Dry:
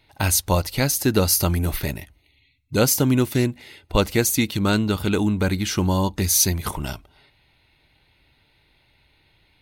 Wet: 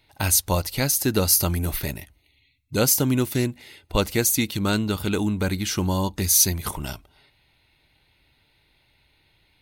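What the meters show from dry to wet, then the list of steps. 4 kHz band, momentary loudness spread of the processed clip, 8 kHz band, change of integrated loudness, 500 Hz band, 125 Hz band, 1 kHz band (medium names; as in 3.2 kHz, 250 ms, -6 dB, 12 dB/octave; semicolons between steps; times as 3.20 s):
-1.0 dB, 11 LU, +1.0 dB, -1.0 dB, -3.0 dB, -3.0 dB, -3.0 dB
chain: treble shelf 5.3 kHz +5.5 dB; trim -3 dB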